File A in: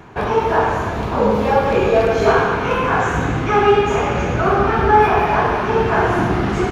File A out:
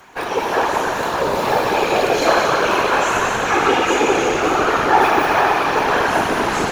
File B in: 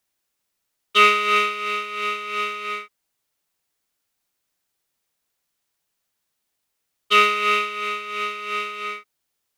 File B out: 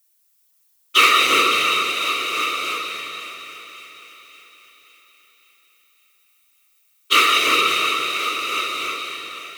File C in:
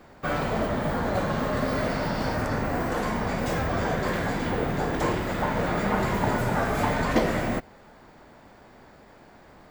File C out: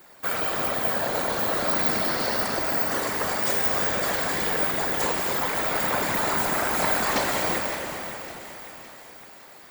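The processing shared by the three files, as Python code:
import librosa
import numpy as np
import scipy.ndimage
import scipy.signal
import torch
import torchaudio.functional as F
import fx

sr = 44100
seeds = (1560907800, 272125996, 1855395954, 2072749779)

p1 = fx.riaa(x, sr, side='recording')
p2 = fx.rev_freeverb(p1, sr, rt60_s=2.6, hf_ratio=0.85, predelay_ms=115, drr_db=1.0)
p3 = fx.whisperise(p2, sr, seeds[0])
p4 = p3 + fx.echo_split(p3, sr, split_hz=1800.0, low_ms=428, high_ms=560, feedback_pct=52, wet_db=-11, dry=0)
p5 = fx.dynamic_eq(p4, sr, hz=4100.0, q=7.7, threshold_db=-41.0, ratio=4.0, max_db=4)
y = F.gain(torch.from_numpy(p5), -2.0).numpy()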